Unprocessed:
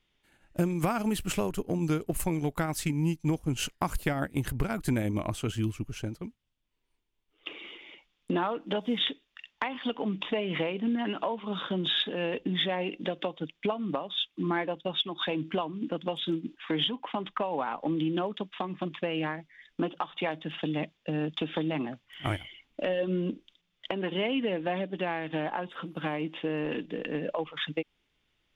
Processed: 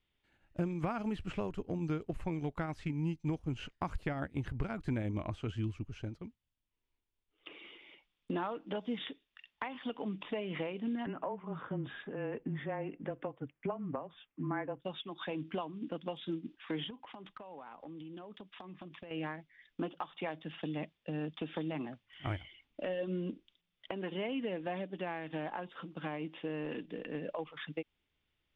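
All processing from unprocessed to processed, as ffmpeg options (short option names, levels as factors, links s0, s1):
-filter_complex "[0:a]asettb=1/sr,asplit=3[s0][s1][s2];[s0]atrim=end=11.064[s3];[s1]atrim=start=11.06:end=14.82,asetpts=PTS-STARTPTS,afade=t=in:d=0.004:c=qsin,afade=t=out:st=3.756:d=0.004:c=qsin,lowpass=f=2000:w=0.5412,lowpass=f=2000:w=1.3066,afreqshift=-20[s4];[s2]atrim=start=14.816[s5];[s3][s4]acrossfade=d=0.004:c1=hsin:c2=qsin[s6];[s6][s5]acrossfade=d=0.004:c1=qsin:c2=hsin,asettb=1/sr,asplit=3[s7][s8][s9];[s7]atrim=end=16.904[s10];[s8]atrim=start=16.9:end=19.11,asetpts=PTS-STARTPTS,afade=t=in:d=0.004:c=qsin,afade=t=out:st=2.206:d=0.004:c=qsin,acompressor=threshold=0.0141:ratio=8:attack=3.2:release=140:knee=1:detection=peak,aeval=exprs='clip(val(0),-1,0.0224)':c=same[s11];[s9]atrim=start=19.106[s12];[s10][s11]acrossfade=d=0.004:c1=hsin:c2=qsin[s13];[s13][s12]acrossfade=d=0.004:c1=qsin:c2=hsin,acrossover=split=2800[s14][s15];[s15]acompressor=threshold=0.00501:ratio=4:attack=1:release=60[s16];[s14][s16]amix=inputs=2:normalize=0,lowpass=4700,equalizer=f=80:t=o:w=0.77:g=6,volume=0.422"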